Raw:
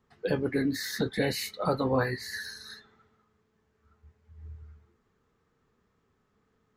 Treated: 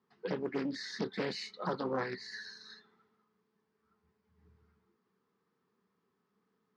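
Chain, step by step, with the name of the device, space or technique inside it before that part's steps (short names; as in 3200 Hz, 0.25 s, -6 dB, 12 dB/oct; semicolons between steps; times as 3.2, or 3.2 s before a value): full-range speaker at full volume (Doppler distortion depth 0.51 ms; speaker cabinet 190–6100 Hz, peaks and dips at 190 Hz +9 dB, 390 Hz +4 dB, 600 Hz -4 dB, 1000 Hz +5 dB, 4800 Hz +4 dB); gain -8 dB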